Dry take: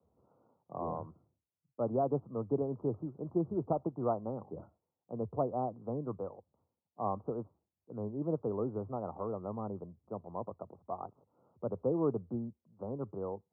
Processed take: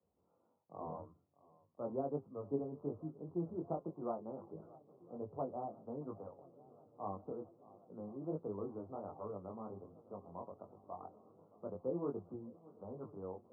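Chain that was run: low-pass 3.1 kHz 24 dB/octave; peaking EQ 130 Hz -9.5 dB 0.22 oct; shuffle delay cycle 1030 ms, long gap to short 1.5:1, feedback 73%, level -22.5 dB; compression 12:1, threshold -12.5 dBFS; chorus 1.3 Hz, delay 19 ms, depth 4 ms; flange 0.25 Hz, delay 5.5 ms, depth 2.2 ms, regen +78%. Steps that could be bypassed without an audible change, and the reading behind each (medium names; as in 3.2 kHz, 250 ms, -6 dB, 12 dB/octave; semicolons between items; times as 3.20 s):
low-pass 3.1 kHz: input has nothing above 1.4 kHz; compression, threshold -12.5 dBFS: peak at its input -19.0 dBFS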